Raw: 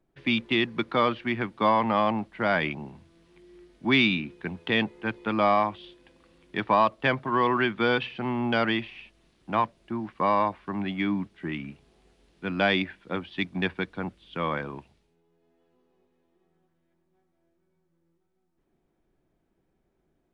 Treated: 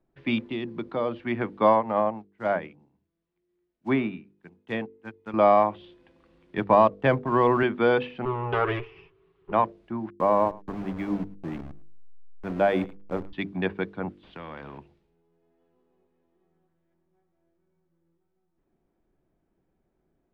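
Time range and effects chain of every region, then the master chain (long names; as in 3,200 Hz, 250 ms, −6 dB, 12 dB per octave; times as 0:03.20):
0:00.48–0:01.21: parametric band 1,700 Hz −6.5 dB 1.6 octaves + downward compressor 2 to 1, threshold −29 dBFS
0:01.73–0:05.34: one scale factor per block 5 bits + treble cut that deepens with the level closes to 1,700 Hz, closed at −18 dBFS + expander for the loud parts 2.5 to 1, over −36 dBFS
0:06.57–0:07.63: mu-law and A-law mismatch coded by A + low-shelf EQ 170 Hz +10.5 dB
0:08.25–0:09.52: lower of the sound and its delayed copy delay 7.2 ms + drawn EQ curve 170 Hz 0 dB, 250 Hz −18 dB, 390 Hz +14 dB, 570 Hz −11 dB, 1,100 Hz +5 dB, 1,700 Hz −2 dB, 2,900 Hz −1 dB, 5,000 Hz −15 dB, 7,800 Hz −27 dB
0:10.10–0:13.33: hold until the input has moved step −31 dBFS + high-shelf EQ 2,100 Hz −10 dB + single-tap delay 107 ms −20.5 dB
0:14.23–0:14.78: downward compressor 2 to 1, threshold −32 dBFS + low-pass filter 1,300 Hz 6 dB per octave + every bin compressed towards the loudest bin 2 to 1
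whole clip: low-pass filter 1,700 Hz 6 dB per octave; hum removal 49.57 Hz, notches 10; dynamic equaliser 560 Hz, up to +7 dB, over −38 dBFS, Q 1.1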